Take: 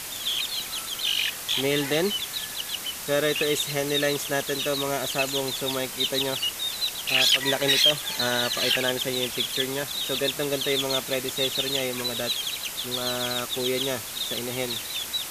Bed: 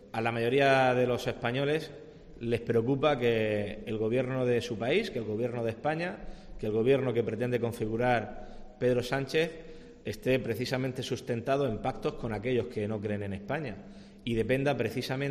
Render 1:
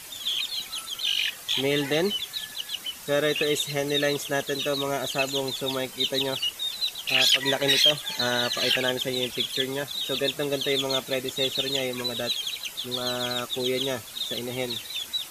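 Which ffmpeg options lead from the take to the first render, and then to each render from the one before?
-af "afftdn=nr=9:nf=-36"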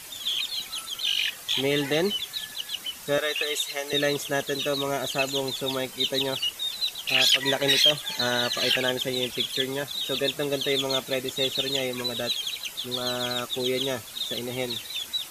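-filter_complex "[0:a]asettb=1/sr,asplit=3[s0][s1][s2];[s0]atrim=end=3.184[s3];[s1]atrim=start=3.18:end=3.93,asetpts=PTS-STARTPTS,afade=t=in:d=0.004:c=qsin,afade=t=out:st=0.746:d=0.004:c=qsin,highpass=650[s4];[s2]atrim=start=3.926[s5];[s3][s4]acrossfade=d=0.004:c1=hsin:c2=qsin[s6];[s6][s5]acrossfade=d=0.004:c1=qsin:c2=hsin"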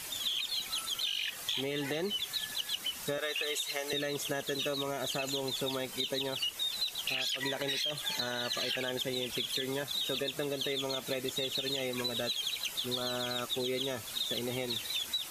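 -af "alimiter=limit=0.126:level=0:latency=1:release=66,acompressor=threshold=0.0282:ratio=6"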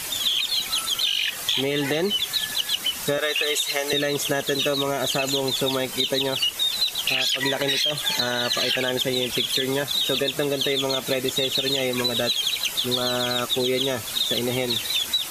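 -af "volume=3.55"

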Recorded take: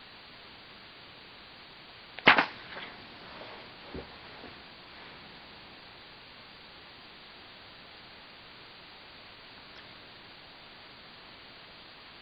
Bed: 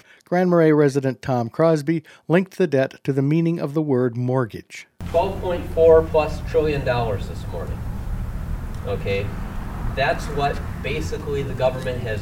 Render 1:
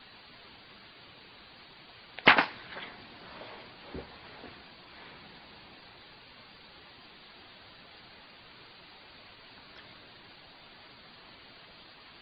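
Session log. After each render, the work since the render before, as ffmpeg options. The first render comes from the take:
-af "afftdn=nr=6:nf=-51"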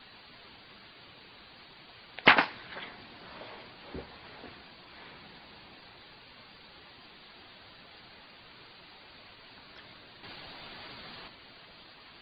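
-filter_complex "[0:a]asettb=1/sr,asplit=3[s0][s1][s2];[s0]atrim=end=10.234[s3];[s1]atrim=start=10.23:end=11.28,asetpts=PTS-STARTPTS,afade=t=in:d=0.004:c=qsin,afade=t=out:st=1.046:d=0.004:c=qsin,acontrast=69[s4];[s2]atrim=start=11.276[s5];[s3][s4]acrossfade=d=0.004:c1=hsin:c2=qsin[s6];[s6][s5]acrossfade=d=0.004:c1=qsin:c2=hsin"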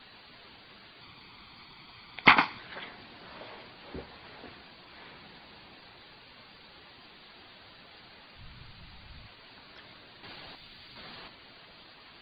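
-filter_complex "[0:a]asettb=1/sr,asplit=3[s0][s1][s2];[s0]atrim=end=1.014[s3];[s1]atrim=start=1.01:end=2.59,asetpts=PTS-STARTPTS,afade=t=in:d=0.004:c=qsin,afade=t=out:st=1.576:d=0.004:c=qsin,aecho=1:1:0.9:0.54,atrim=end_sample=69678[s4];[s2]atrim=start=2.586[s5];[s3][s4]acrossfade=d=0.004:c1=hsin:c2=qsin[s6];[s6][s5]acrossfade=d=0.004:c1=qsin:c2=hsin,asplit=3[s7][s8][s9];[s7]afade=t=out:st=8.35:d=0.02[s10];[s8]asubboost=boost=9.5:cutoff=120,afade=t=in:st=8.35:d=0.02,afade=t=out:st=9.26:d=0.02[s11];[s9]afade=t=in:st=9.26:d=0.02[s12];[s10][s11][s12]amix=inputs=3:normalize=0,asettb=1/sr,asplit=3[s13][s14][s15];[s13]atrim=end=10.554[s16];[s14]atrim=start=10.55:end=10.96,asetpts=PTS-STARTPTS,afade=t=in:d=0.004:c=qsin,afade=t=out:st=0.406:d=0.004:c=qsin,equalizer=f=680:w=0.35:g=-11[s17];[s15]atrim=start=10.956[s18];[s16][s17]acrossfade=d=0.004:c1=hsin:c2=qsin[s19];[s19][s18]acrossfade=d=0.004:c1=qsin:c2=hsin"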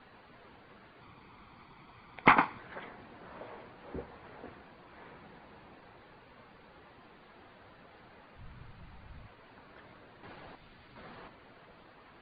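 -af "lowpass=1600,equalizer=f=490:w=6.5:g=3.5"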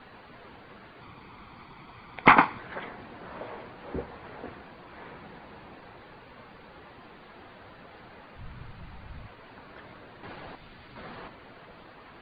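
-af "volume=2.24,alimiter=limit=0.794:level=0:latency=1"

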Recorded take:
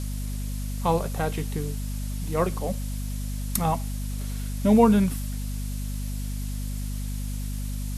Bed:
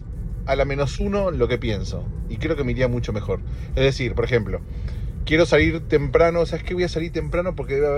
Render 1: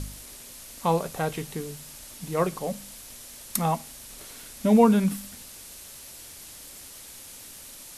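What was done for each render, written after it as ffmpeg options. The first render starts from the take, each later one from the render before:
-af "bandreject=f=50:t=h:w=4,bandreject=f=100:t=h:w=4,bandreject=f=150:t=h:w=4,bandreject=f=200:t=h:w=4,bandreject=f=250:t=h:w=4"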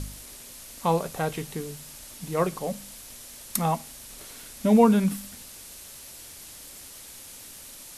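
-af anull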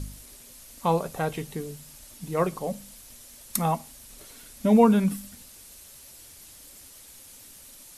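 -af "afftdn=nr=6:nf=-45"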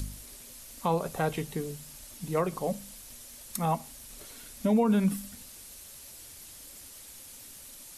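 -filter_complex "[0:a]acrossover=split=440|1500[s0][s1][s2];[s2]acompressor=mode=upward:threshold=0.00562:ratio=2.5[s3];[s0][s1][s3]amix=inputs=3:normalize=0,alimiter=limit=0.141:level=0:latency=1:release=128"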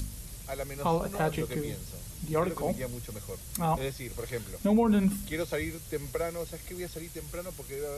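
-filter_complex "[1:a]volume=0.15[s0];[0:a][s0]amix=inputs=2:normalize=0"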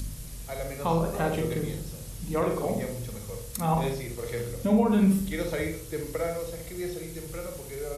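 -filter_complex "[0:a]asplit=2[s0][s1];[s1]adelay=42,volume=0.473[s2];[s0][s2]amix=inputs=2:normalize=0,asplit=2[s3][s4];[s4]adelay=67,lowpass=f=820:p=1,volume=0.708,asplit=2[s5][s6];[s6]adelay=67,lowpass=f=820:p=1,volume=0.55,asplit=2[s7][s8];[s8]adelay=67,lowpass=f=820:p=1,volume=0.55,asplit=2[s9][s10];[s10]adelay=67,lowpass=f=820:p=1,volume=0.55,asplit=2[s11][s12];[s12]adelay=67,lowpass=f=820:p=1,volume=0.55,asplit=2[s13][s14];[s14]adelay=67,lowpass=f=820:p=1,volume=0.55,asplit=2[s15][s16];[s16]adelay=67,lowpass=f=820:p=1,volume=0.55,asplit=2[s17][s18];[s18]adelay=67,lowpass=f=820:p=1,volume=0.55[s19];[s5][s7][s9][s11][s13][s15][s17][s19]amix=inputs=8:normalize=0[s20];[s3][s20]amix=inputs=2:normalize=0"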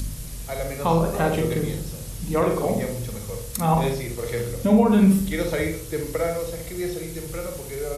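-af "volume=1.88"

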